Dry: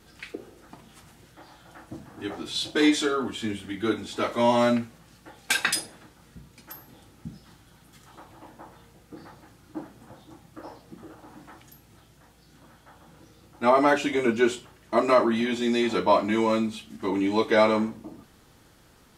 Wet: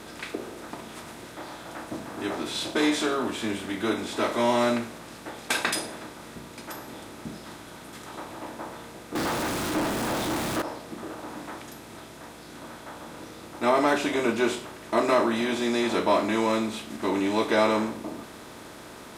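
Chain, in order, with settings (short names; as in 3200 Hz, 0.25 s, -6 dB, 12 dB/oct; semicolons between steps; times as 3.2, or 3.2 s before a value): per-bin compression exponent 0.6; 9.15–10.62 power-law curve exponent 0.35; gain -5 dB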